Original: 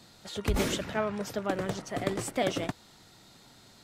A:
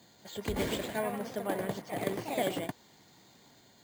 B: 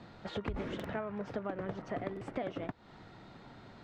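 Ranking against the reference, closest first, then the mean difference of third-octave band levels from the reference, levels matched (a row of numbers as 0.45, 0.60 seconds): A, B; 3.5, 8.5 decibels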